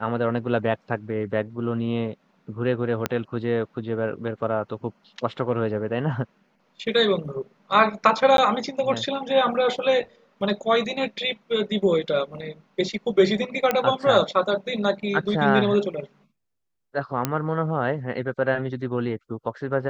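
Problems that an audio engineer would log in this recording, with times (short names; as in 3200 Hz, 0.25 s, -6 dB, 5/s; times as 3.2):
3.06 pop -8 dBFS
8.37–8.38 gap 12 ms
13.71 pop -8 dBFS
17.25 pop -7 dBFS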